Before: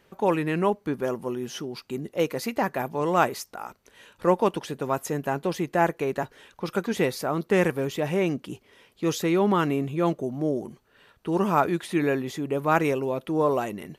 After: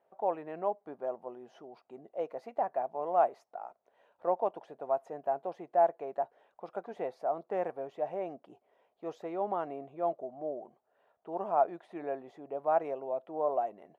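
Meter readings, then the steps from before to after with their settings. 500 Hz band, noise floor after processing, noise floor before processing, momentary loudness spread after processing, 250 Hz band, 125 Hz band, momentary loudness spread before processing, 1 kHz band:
−7.0 dB, −76 dBFS, −63 dBFS, 16 LU, −19.0 dB, −25.5 dB, 11 LU, −5.0 dB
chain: resonant band-pass 690 Hz, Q 5.6
level +1.5 dB

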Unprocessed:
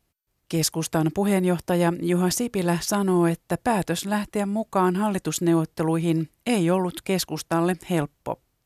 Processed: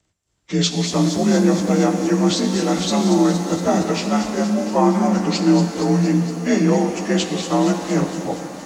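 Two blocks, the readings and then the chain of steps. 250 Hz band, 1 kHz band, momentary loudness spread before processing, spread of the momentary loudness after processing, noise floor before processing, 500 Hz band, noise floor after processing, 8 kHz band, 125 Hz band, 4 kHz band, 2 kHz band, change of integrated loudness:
+6.5 dB, +4.0 dB, 5 LU, 4 LU, −73 dBFS, +4.5 dB, −68 dBFS, +3.5 dB, +4.5 dB, +7.5 dB, +2.5 dB, +5.5 dB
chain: partials spread apart or drawn together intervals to 87%
delay with a high-pass on its return 233 ms, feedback 72%, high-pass 5,200 Hz, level −4 dB
reverb with rising layers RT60 3.1 s, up +7 semitones, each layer −8 dB, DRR 6 dB
level +5 dB

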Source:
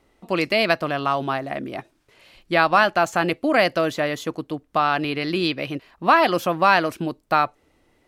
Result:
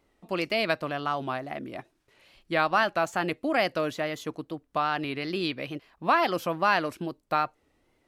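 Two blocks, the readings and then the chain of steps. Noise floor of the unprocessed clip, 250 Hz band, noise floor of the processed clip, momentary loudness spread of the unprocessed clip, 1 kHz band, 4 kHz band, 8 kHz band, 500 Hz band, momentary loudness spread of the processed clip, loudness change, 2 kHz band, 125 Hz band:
−64 dBFS, −7.0 dB, −71 dBFS, 12 LU, −7.0 dB, −6.5 dB, −7.0 dB, −7.0 dB, 12 LU, −7.0 dB, −7.0 dB, −7.0 dB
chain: tape wow and flutter 78 cents
level −7 dB

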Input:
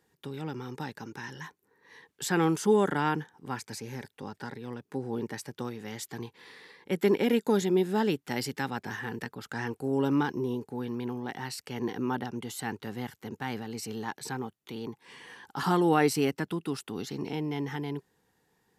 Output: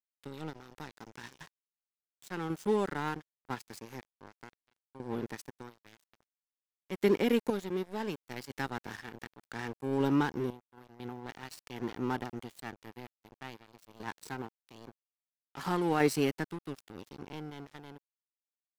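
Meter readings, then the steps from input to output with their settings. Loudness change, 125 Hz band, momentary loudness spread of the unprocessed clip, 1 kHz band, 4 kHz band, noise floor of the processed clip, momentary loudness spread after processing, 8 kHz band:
−3.5 dB, −6.0 dB, 16 LU, −5.5 dB, −6.0 dB, below −85 dBFS, 21 LU, −9.5 dB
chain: sample-and-hold tremolo 2 Hz, depth 70%
dead-zone distortion −40 dBFS

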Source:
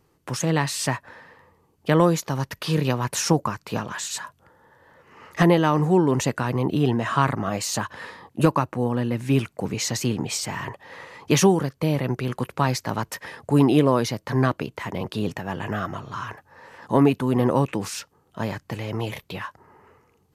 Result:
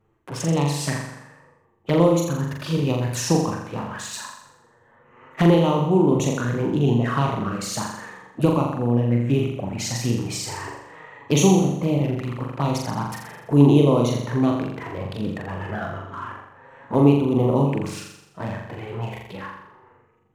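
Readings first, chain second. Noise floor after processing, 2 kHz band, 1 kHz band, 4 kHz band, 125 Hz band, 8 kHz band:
−57 dBFS, −3.0 dB, −1.5 dB, −1.0 dB, +2.5 dB, −1.0 dB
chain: adaptive Wiener filter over 9 samples
flanger swept by the level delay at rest 9.2 ms, full sweep at −18.5 dBFS
flutter between parallel walls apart 7.2 metres, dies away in 0.8 s

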